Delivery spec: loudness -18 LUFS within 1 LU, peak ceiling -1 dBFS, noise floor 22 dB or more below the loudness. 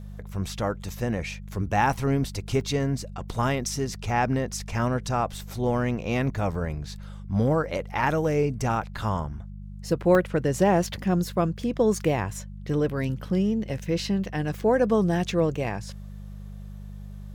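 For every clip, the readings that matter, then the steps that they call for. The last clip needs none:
dropouts 4; longest dropout 1.7 ms; hum 50 Hz; harmonics up to 200 Hz; hum level -36 dBFS; loudness -26.5 LUFS; peak -8.5 dBFS; loudness target -18.0 LUFS
-> interpolate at 0.89/2.61/6.55/10.15, 1.7 ms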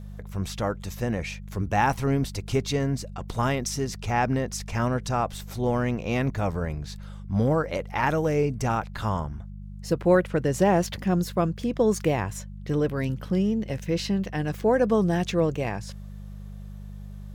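dropouts 0; hum 50 Hz; harmonics up to 200 Hz; hum level -36 dBFS
-> de-hum 50 Hz, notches 4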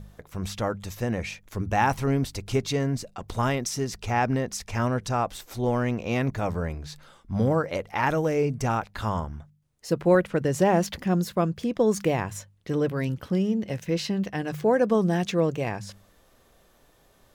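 hum none; loudness -26.5 LUFS; peak -8.5 dBFS; loudness target -18.0 LUFS
-> gain +8.5 dB; limiter -1 dBFS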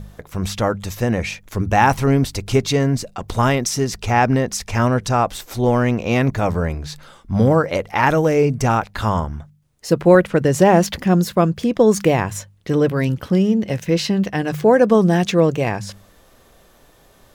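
loudness -18.0 LUFS; peak -1.0 dBFS; noise floor -52 dBFS

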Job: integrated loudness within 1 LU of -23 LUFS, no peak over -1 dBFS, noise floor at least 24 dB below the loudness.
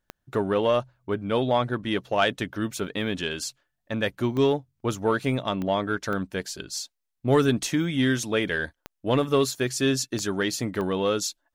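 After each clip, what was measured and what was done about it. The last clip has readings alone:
clicks 7; loudness -26.0 LUFS; peak -9.0 dBFS; loudness target -23.0 LUFS
-> de-click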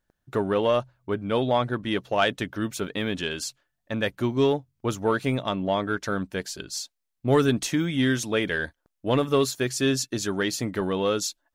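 clicks 0; loudness -26.0 LUFS; peak -9.0 dBFS; loudness target -23.0 LUFS
-> gain +3 dB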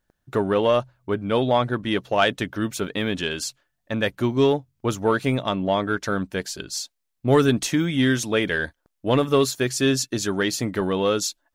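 loudness -23.0 LUFS; peak -6.0 dBFS; noise floor -77 dBFS

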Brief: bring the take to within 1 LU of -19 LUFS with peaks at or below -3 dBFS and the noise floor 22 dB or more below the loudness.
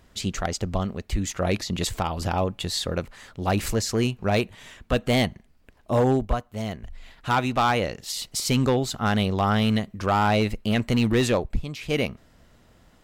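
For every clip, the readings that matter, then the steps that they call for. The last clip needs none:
clipped 1.0%; flat tops at -14.5 dBFS; loudness -25.0 LUFS; peak -14.5 dBFS; loudness target -19.0 LUFS
-> clip repair -14.5 dBFS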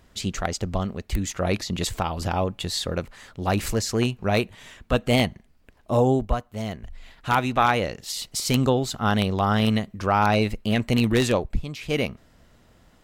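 clipped 0.0%; loudness -24.5 LUFS; peak -5.5 dBFS; loudness target -19.0 LUFS
-> gain +5.5 dB; limiter -3 dBFS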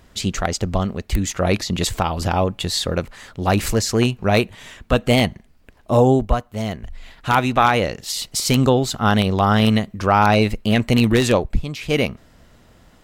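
loudness -19.5 LUFS; peak -3.0 dBFS; noise floor -52 dBFS

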